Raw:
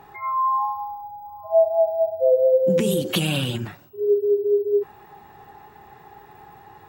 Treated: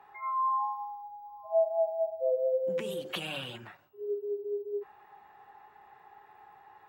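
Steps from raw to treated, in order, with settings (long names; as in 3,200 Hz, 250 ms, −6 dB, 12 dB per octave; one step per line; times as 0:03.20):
three-way crossover with the lows and the highs turned down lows −14 dB, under 530 Hz, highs −12 dB, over 3,100 Hz
mains-hum notches 50/100/150 Hz
level −7 dB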